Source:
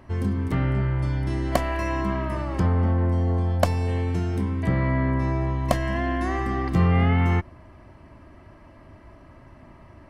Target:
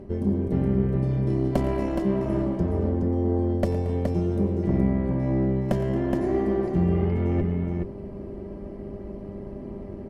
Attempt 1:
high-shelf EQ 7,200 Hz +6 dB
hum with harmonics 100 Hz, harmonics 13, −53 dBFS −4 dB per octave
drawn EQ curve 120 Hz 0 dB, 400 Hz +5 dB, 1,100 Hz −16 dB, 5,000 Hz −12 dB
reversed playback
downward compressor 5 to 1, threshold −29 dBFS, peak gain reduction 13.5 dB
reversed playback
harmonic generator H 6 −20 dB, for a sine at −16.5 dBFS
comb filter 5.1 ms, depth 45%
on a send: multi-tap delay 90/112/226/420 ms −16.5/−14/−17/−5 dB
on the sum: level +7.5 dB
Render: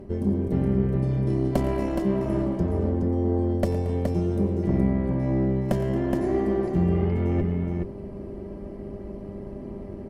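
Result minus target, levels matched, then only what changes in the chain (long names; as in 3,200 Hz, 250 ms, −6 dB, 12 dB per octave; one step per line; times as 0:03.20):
8,000 Hz band +3.0 dB
remove: high-shelf EQ 7,200 Hz +6 dB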